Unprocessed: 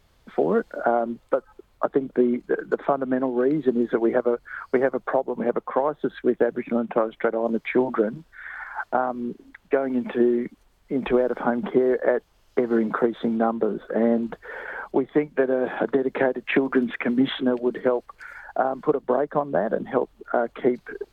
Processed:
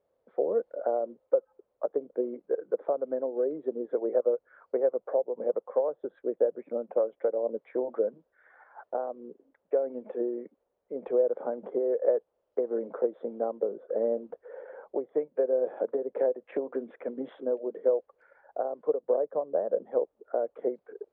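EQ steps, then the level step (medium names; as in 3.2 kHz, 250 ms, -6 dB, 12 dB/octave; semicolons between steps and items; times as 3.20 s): band-pass filter 520 Hz, Q 5; 0.0 dB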